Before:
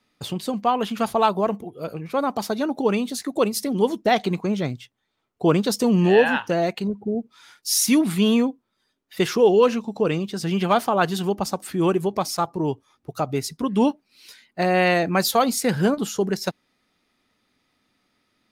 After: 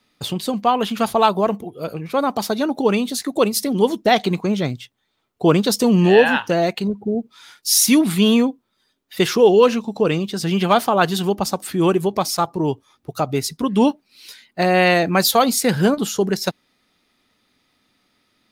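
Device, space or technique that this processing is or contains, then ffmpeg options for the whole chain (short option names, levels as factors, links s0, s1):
presence and air boost: -af "equalizer=f=3700:t=o:w=0.77:g=3,highshelf=f=11000:g=5,volume=1.5"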